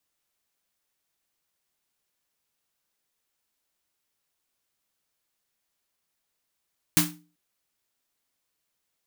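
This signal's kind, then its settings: snare drum length 0.39 s, tones 170 Hz, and 300 Hz, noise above 730 Hz, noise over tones 5 dB, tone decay 0.39 s, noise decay 0.26 s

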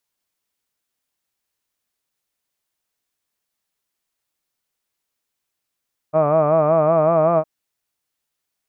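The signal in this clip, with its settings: formant-synthesis vowel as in hud, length 1.31 s, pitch 151 Hz, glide +1.5 st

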